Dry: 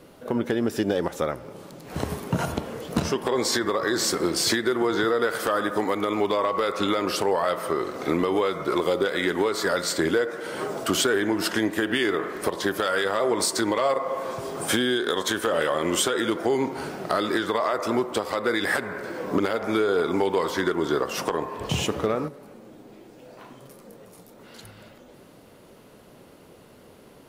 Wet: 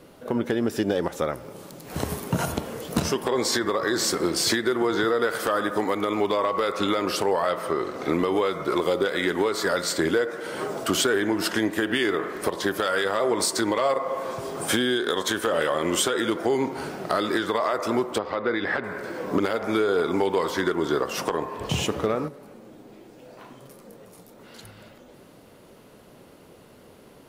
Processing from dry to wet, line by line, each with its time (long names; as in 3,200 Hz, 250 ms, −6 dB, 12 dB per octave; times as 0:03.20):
0:01.33–0:03.25: high-shelf EQ 6,700 Hz +8.5 dB
0:07.47–0:08.13: high-shelf EQ 8,300 Hz −6 dB
0:18.18–0:18.84: high-frequency loss of the air 250 metres